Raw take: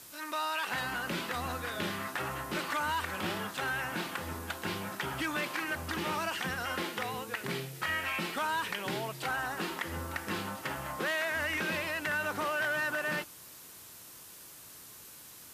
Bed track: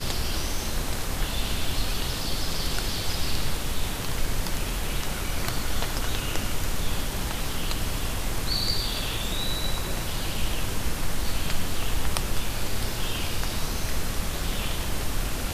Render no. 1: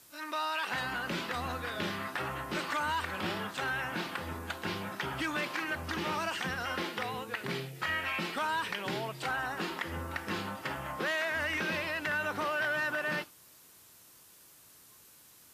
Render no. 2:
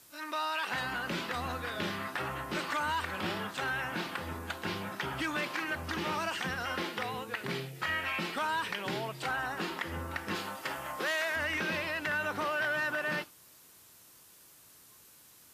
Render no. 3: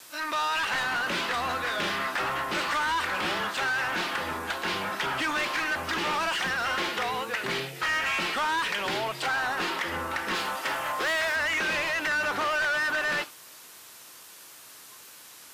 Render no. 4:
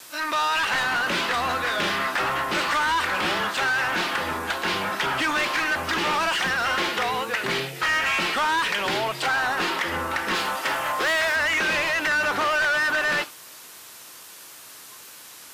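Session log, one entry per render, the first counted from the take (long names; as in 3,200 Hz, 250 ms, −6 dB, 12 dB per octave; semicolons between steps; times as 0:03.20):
noise reduction from a noise print 7 dB
0:10.35–0:11.36: bass and treble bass −9 dB, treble +5 dB
tape wow and flutter 27 cents; mid-hump overdrive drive 19 dB, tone 5,700 Hz, clips at −20.5 dBFS
level +4.5 dB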